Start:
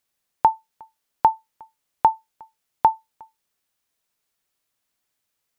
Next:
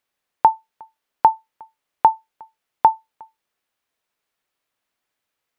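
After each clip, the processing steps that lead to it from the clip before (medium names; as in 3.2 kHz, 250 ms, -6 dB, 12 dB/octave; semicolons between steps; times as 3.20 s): tone controls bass -6 dB, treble -9 dB; trim +3 dB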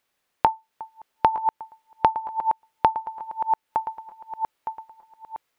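backward echo that repeats 456 ms, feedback 59%, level -9 dB; compression 2.5:1, threshold -25 dBFS, peak gain reduction 11.5 dB; trim +4.5 dB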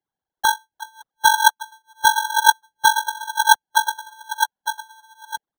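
formants replaced by sine waves; sample-and-hold 18×; trim +6.5 dB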